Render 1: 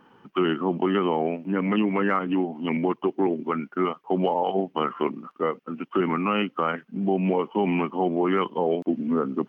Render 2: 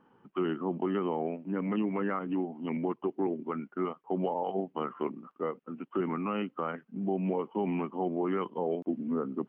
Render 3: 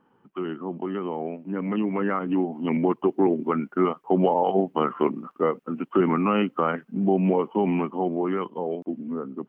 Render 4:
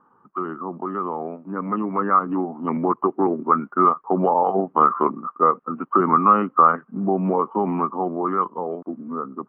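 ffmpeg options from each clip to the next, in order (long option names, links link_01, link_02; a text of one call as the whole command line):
ffmpeg -i in.wav -af "highshelf=frequency=2100:gain=-11.5,volume=-7dB" out.wav
ffmpeg -i in.wav -af "dynaudnorm=framelen=480:gausssize=9:maxgain=10.5dB" out.wav
ffmpeg -i in.wav -af "lowpass=frequency=1200:width_type=q:width=6,volume=-1dB" out.wav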